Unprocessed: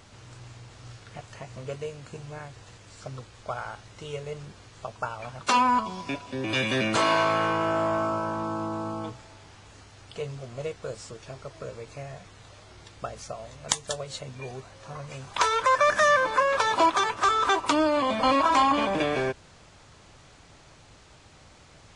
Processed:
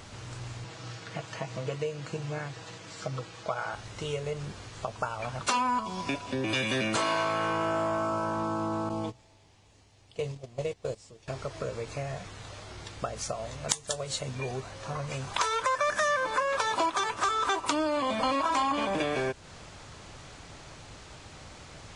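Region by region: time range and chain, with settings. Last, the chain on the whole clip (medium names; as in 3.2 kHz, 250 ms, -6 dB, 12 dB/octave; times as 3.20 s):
0.64–3.74 s: band-pass 130–7400 Hz + comb 6.2 ms, depth 52%
8.89–11.28 s: gate -37 dBFS, range -15 dB + peaking EQ 1.4 kHz -9.5 dB 0.58 oct
whole clip: dynamic bell 9.1 kHz, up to +5 dB, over -49 dBFS, Q 0.72; compression 2.5:1, threshold -36 dBFS; trim +5.5 dB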